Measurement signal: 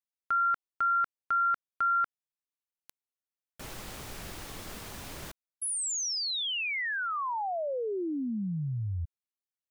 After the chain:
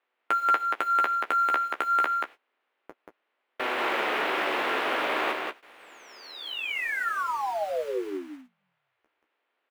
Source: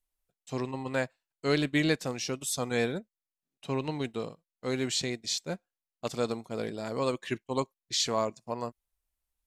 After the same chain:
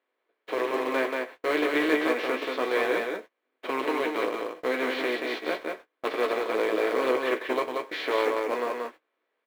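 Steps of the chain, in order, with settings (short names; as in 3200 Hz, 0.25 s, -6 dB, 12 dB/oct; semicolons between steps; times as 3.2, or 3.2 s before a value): per-bin compression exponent 0.4; HPF 320 Hz 24 dB/oct; gate -36 dBFS, range -26 dB; LPF 2800 Hz 24 dB/oct; in parallel at -9 dB: companded quantiser 4-bit; on the sum: flange 0.28 Hz, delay 7.7 ms, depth 5.9 ms, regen -23%; doubler 16 ms -10 dB; on a send: echo 0.182 s -3.5 dB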